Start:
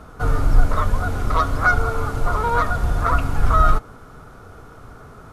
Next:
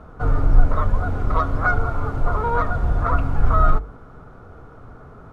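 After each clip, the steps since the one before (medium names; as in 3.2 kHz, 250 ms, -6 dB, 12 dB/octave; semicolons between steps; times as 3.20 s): low-pass 1 kHz 6 dB/octave; hum notches 50/100/150/200/250/300/350/400/450 Hz; trim +1 dB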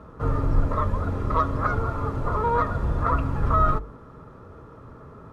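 comb of notches 730 Hz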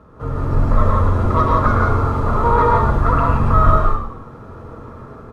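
level rider gain up to 7 dB; frequency-shifting echo 109 ms, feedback 37%, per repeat -46 Hz, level -7.5 dB; gated-style reverb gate 200 ms rising, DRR -1.5 dB; trim -2 dB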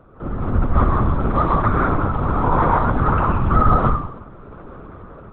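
LPC vocoder at 8 kHz whisper; trim -2.5 dB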